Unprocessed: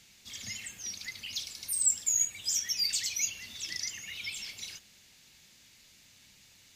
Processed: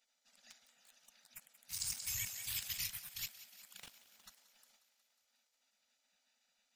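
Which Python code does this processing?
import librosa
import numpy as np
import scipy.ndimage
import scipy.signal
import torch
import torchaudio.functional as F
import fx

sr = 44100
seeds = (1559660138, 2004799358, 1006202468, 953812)

p1 = fx.wiener(x, sr, points=41)
p2 = scipy.signal.sosfilt(scipy.signal.cheby1(2, 1.0, [120.0, 970.0], 'bandstop', fs=sr, output='sos'), p1)
p3 = fx.spec_gate(p2, sr, threshold_db=-25, keep='weak')
p4 = fx.peak_eq(p3, sr, hz=1000.0, db=-5.0, octaves=2.2)
p5 = fx.sample_hold(p4, sr, seeds[0], rate_hz=13000.0, jitter_pct=0, at=(3.76, 4.25), fade=0.02)
p6 = p5 + fx.echo_thinned(p5, sr, ms=181, feedback_pct=70, hz=330.0, wet_db=-15.0, dry=0)
p7 = fx.env_flatten(p6, sr, amount_pct=50, at=(1.9, 2.87))
y = p7 * librosa.db_to_amplitude(8.5)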